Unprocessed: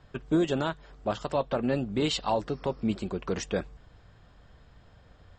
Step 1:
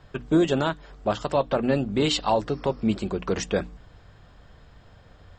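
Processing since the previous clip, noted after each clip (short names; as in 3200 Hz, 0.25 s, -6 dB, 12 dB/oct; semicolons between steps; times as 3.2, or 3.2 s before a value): notches 60/120/180/240/300 Hz; gain +5 dB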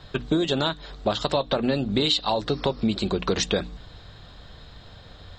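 bell 3900 Hz +14.5 dB 0.47 oct; compressor 12:1, threshold -24 dBFS, peak gain reduction 13 dB; gain +5 dB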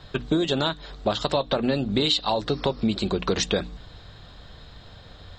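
nothing audible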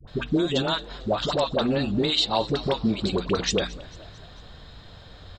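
dispersion highs, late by 77 ms, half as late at 620 Hz; frequency-shifting echo 0.223 s, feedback 56%, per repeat +62 Hz, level -21 dB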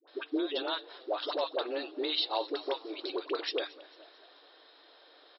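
brick-wall FIR band-pass 280–5600 Hz; gain -8 dB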